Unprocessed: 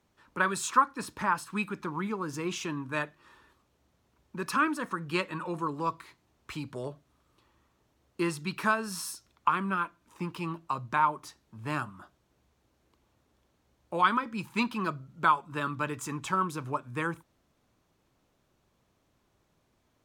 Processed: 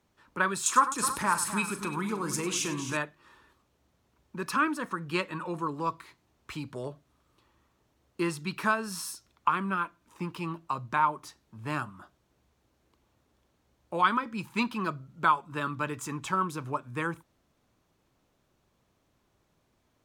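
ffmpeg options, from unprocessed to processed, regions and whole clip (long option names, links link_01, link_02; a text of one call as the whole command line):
ffmpeg -i in.wav -filter_complex "[0:a]asettb=1/sr,asplit=3[link_01][link_02][link_03];[link_01]atrim=end=0.664[link_04];[link_02]atrim=start=0.66:end=2.97,asetpts=PTS-STARTPTS,afade=type=in:duration=0.004:curve=qsin,afade=type=out:start_time=2.306:duration=0.004:curve=qsin,acompressor=mode=upward:threshold=-31dB:ratio=2.5:attack=3.2:release=140:knee=2.83:detection=peak,equalizer=frequency=9600:width_type=o:width=1.4:gain=13.5,aecho=1:1:40|99|259|323:0.237|0.211|0.282|0.178,atrim=end_sample=101871[link_05];[link_03]atrim=start=2.966[link_06];[link_04][link_05]acrossfade=duration=0.004:curve1=hsin:curve2=qsin[link_07];[link_07][link_06]acrossfade=duration=0.004:curve1=qsin:curve2=hsin" out.wav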